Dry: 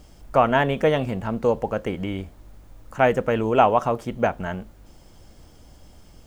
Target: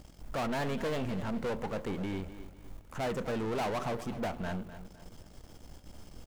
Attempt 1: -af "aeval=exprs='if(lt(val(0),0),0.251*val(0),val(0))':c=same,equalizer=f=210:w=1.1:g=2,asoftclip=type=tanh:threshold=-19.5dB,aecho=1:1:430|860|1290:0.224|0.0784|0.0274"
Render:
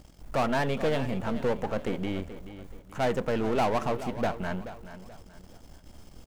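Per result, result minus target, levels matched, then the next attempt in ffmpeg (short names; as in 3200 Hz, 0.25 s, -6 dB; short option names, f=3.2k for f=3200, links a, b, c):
echo 0.177 s late; soft clip: distortion -5 dB
-af "aeval=exprs='if(lt(val(0),0),0.251*val(0),val(0))':c=same,equalizer=f=210:w=1.1:g=2,asoftclip=type=tanh:threshold=-19.5dB,aecho=1:1:253|506|759:0.224|0.0784|0.0274"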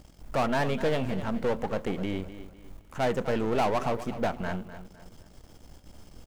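soft clip: distortion -5 dB
-af "aeval=exprs='if(lt(val(0),0),0.251*val(0),val(0))':c=same,equalizer=f=210:w=1.1:g=2,asoftclip=type=tanh:threshold=-30dB,aecho=1:1:253|506|759:0.224|0.0784|0.0274"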